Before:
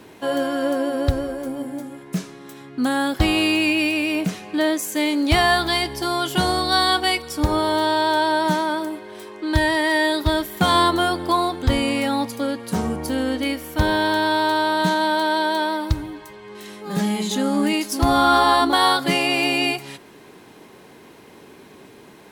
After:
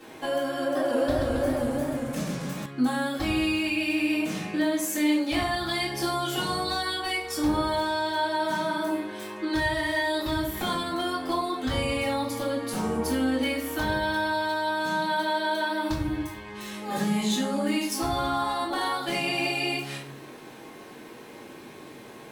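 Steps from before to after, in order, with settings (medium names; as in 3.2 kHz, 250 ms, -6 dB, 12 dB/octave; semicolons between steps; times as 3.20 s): bass shelf 160 Hz -10.5 dB; compression 12:1, threshold -26 dBFS, peak gain reduction 14 dB; hard clipper -21.5 dBFS, distortion -28 dB; reverberation RT60 0.55 s, pre-delay 3 ms, DRR -8.5 dB; 0.61–2.66 s: modulated delay 138 ms, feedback 72%, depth 210 cents, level -4 dB; trim -7 dB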